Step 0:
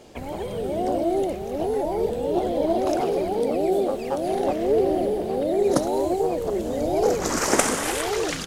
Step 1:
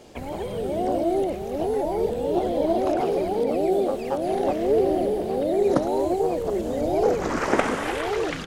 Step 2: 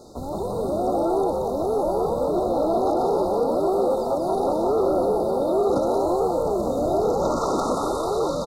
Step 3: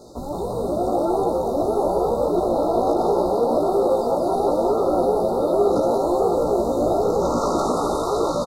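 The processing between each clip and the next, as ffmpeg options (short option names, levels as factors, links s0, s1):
-filter_complex "[0:a]acrossover=split=3400[s0][s1];[s1]acompressor=threshold=0.00501:ratio=4:attack=1:release=60[s2];[s0][s2]amix=inputs=2:normalize=0"
-filter_complex "[0:a]asoftclip=type=tanh:threshold=0.1,asplit=5[s0][s1][s2][s3][s4];[s1]adelay=178,afreqshift=130,volume=0.631[s5];[s2]adelay=356,afreqshift=260,volume=0.221[s6];[s3]adelay=534,afreqshift=390,volume=0.0776[s7];[s4]adelay=712,afreqshift=520,volume=0.0269[s8];[s0][s5][s6][s7][s8]amix=inputs=5:normalize=0,afftfilt=real='re*(1-between(b*sr/4096,1400,3600))':imag='im*(1-between(b*sr/4096,1400,3600))':win_size=4096:overlap=0.75,volume=1.33"
-filter_complex "[0:a]asplit=2[s0][s1];[s1]adelay=17,volume=0.631[s2];[s0][s2]amix=inputs=2:normalize=0,asplit=2[s3][s4];[s4]aecho=0:1:659:0.422[s5];[s3][s5]amix=inputs=2:normalize=0"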